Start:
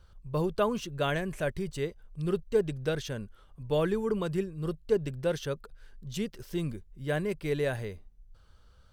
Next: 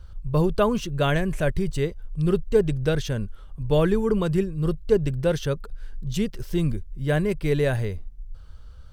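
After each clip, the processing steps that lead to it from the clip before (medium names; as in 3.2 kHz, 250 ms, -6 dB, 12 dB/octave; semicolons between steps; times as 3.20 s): bass shelf 120 Hz +12 dB; trim +5.5 dB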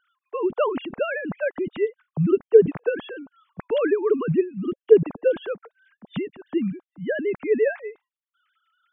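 formants replaced by sine waves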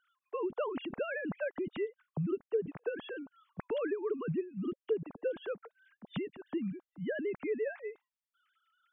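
compression 3:1, threshold -28 dBFS, peak gain reduction 15.5 dB; trim -5.5 dB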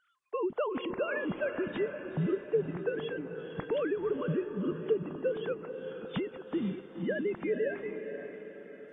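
echo that smears into a reverb 490 ms, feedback 49%, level -8 dB; trim +3 dB; AAC 32 kbps 22.05 kHz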